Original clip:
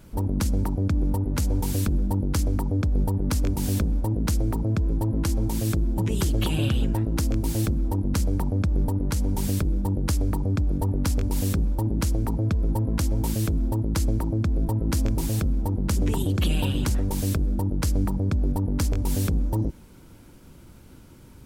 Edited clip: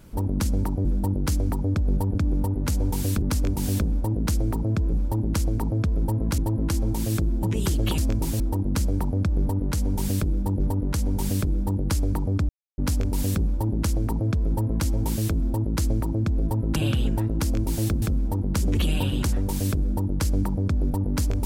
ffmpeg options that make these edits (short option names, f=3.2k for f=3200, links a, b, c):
-filter_complex "[0:a]asplit=14[a][b][c][d][e][f][g][h][i][j][k][l][m][n];[a]atrim=end=0.852[o];[b]atrim=start=1.918:end=3.222[p];[c]atrim=start=0.848:end=1.922[q];[d]atrim=start=3.218:end=4.932[r];[e]atrim=start=11.598:end=13.052[s];[f]atrim=start=4.928:end=6.532[t];[g]atrim=start=14.938:end=15.362[u];[h]atrim=start=7.788:end=9.992[v];[i]atrim=start=8.778:end=10.67,asetpts=PTS-STARTPTS,afade=t=out:st=1.888:d=0.004:c=hsin[w];[j]atrim=start=10.67:end=10.96,asetpts=PTS-STARTPTS,volume=0[x];[k]atrim=start=10.96:end=14.942,asetpts=PTS-STARTPTS,afade=t=in:d=0.004:c=hsin[y];[l]atrim=start=6.528:end=7.792[z];[m]atrim=start=15.358:end=16.112[aa];[n]atrim=start=16.388[ab];[o][p]acrossfade=d=0.004:c1=hsin:c2=hsin[ac];[ac][q]acrossfade=d=0.004:c1=hsin:c2=hsin[ad];[ad][r]acrossfade=d=0.004:c1=hsin:c2=hsin[ae];[ae][s]acrossfade=d=0.004:c1=hsin:c2=hsin[af];[af][t]acrossfade=d=0.004:c1=hsin:c2=hsin[ag];[ag][u]acrossfade=d=0.004:c1=hsin:c2=hsin[ah];[ah][v]acrossfade=d=0.004:c1=hsin:c2=hsin[ai];[w][x][y]concat=n=3:v=0:a=1[aj];[ai][aj]acrossfade=d=0.004:c1=hsin:c2=hsin[ak];[ak][z]acrossfade=d=0.004:c1=hsin:c2=hsin[al];[al][aa]acrossfade=d=0.004:c1=hsin:c2=hsin[am];[am][ab]acrossfade=d=0.004:c1=hsin:c2=hsin"